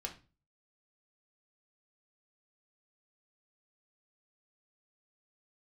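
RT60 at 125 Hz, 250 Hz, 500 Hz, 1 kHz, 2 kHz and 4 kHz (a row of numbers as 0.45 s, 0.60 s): 0.55 s, 0.45 s, 0.35 s, 0.30 s, 0.30 s, 0.30 s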